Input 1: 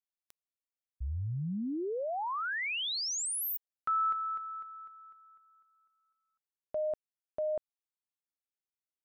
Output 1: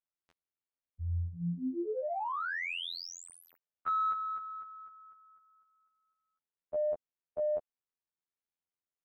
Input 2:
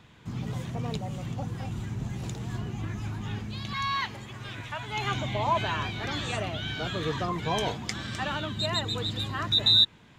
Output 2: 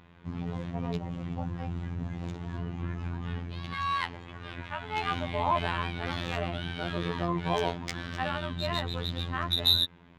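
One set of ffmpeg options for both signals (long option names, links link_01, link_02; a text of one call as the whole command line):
ffmpeg -i in.wav -af "afftfilt=real='hypot(re,im)*cos(PI*b)':imag='0':win_size=2048:overlap=0.75,adynamicsmooth=sensitivity=1.5:basefreq=2800,volume=3.5dB" out.wav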